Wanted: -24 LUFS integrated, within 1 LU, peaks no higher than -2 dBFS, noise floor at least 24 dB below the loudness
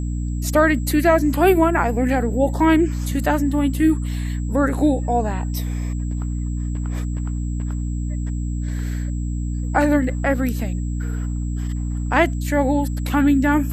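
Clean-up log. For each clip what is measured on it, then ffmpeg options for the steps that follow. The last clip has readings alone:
hum 60 Hz; harmonics up to 300 Hz; hum level -21 dBFS; steady tone 7700 Hz; tone level -45 dBFS; loudness -21.0 LUFS; peak -3.0 dBFS; loudness target -24.0 LUFS
-> -af "bandreject=f=60:t=h:w=4,bandreject=f=120:t=h:w=4,bandreject=f=180:t=h:w=4,bandreject=f=240:t=h:w=4,bandreject=f=300:t=h:w=4"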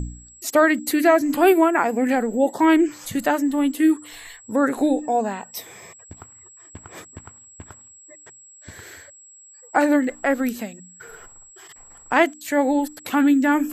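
hum none; steady tone 7700 Hz; tone level -45 dBFS
-> -af "bandreject=f=7.7k:w=30"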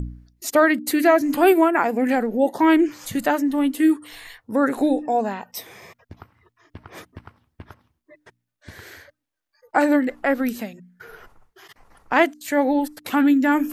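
steady tone none; loudness -20.0 LUFS; peak -4.0 dBFS; loudness target -24.0 LUFS
-> -af "volume=-4dB"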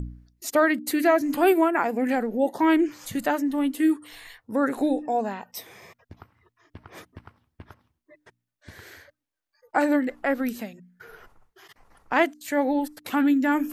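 loudness -24.0 LUFS; peak -8.0 dBFS; noise floor -82 dBFS

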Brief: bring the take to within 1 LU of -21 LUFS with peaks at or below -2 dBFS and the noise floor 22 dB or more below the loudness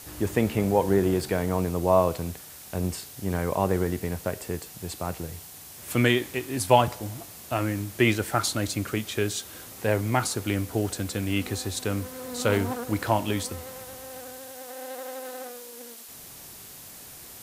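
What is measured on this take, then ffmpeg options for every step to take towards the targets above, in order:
noise floor -45 dBFS; noise floor target -49 dBFS; loudness -27.0 LUFS; peak -5.5 dBFS; loudness target -21.0 LUFS
-> -af "afftdn=nr=6:nf=-45"
-af "volume=6dB,alimiter=limit=-2dB:level=0:latency=1"

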